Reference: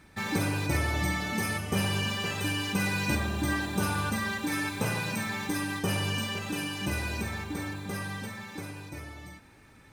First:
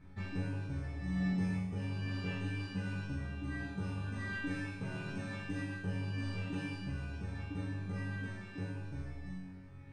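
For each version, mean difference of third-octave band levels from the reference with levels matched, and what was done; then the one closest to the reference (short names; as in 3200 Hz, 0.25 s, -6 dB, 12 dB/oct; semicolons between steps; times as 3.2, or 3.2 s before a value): 9.5 dB: RIAA curve playback; reverse; compressor 6:1, threshold -26 dBFS, peak gain reduction 14 dB; reverse; resonator bank F#2 fifth, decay 0.72 s; downsampling 22050 Hz; gain +10 dB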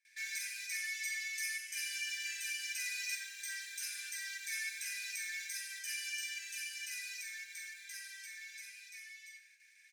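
22.5 dB: gate with hold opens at -46 dBFS; dynamic EQ 2900 Hz, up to -5 dB, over -47 dBFS, Q 1; rippled Chebyshev high-pass 1600 Hz, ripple 9 dB; on a send: echo 86 ms -10.5 dB; on the sum: gain +2 dB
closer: first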